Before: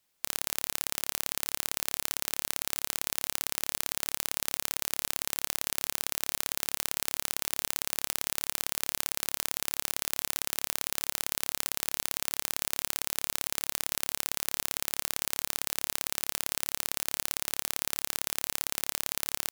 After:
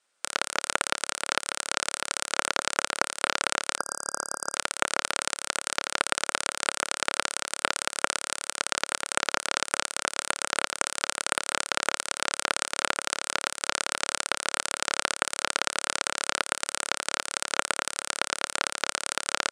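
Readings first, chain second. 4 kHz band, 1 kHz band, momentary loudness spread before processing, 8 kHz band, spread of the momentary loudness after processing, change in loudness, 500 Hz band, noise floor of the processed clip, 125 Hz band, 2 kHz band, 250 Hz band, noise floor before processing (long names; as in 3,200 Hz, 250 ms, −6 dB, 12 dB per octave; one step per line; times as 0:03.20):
+5.0 dB, +12.0 dB, 0 LU, +3.0 dB, 3 LU, +2.5 dB, +10.5 dB, −70 dBFS, −5.5 dB, +10.5 dB, +4.5 dB, −75 dBFS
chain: each half-wave held at its own peak
gain on a spectral selection 0:03.78–0:04.55, 1,600–4,800 Hz −27 dB
loudspeaker in its box 310–9,100 Hz, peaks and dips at 560 Hz +5 dB, 1,400 Hz +9 dB, 8,700 Hz +9 dB
level −2.5 dB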